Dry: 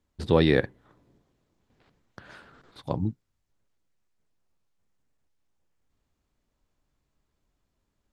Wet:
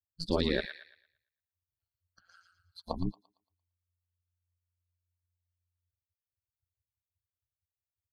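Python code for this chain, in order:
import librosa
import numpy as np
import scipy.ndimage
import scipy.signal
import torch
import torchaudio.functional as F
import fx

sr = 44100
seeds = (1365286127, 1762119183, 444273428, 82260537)

p1 = fx.bin_expand(x, sr, power=2.0)
p2 = fx.peak_eq(p1, sr, hz=4400.0, db=12.0, octaves=0.4)
p3 = fx.over_compress(p2, sr, threshold_db=-29.0, ratio=-0.5)
p4 = p2 + (p3 * 10.0 ** (-2.5 / 20.0))
p5 = p4 * np.sin(2.0 * np.pi * 88.0 * np.arange(len(p4)) / sr)
p6 = p5 + fx.echo_wet_highpass(p5, sr, ms=114, feedback_pct=34, hz=1700.0, wet_db=-3.5, dry=0)
y = p6 * 10.0 ** (-5.0 / 20.0)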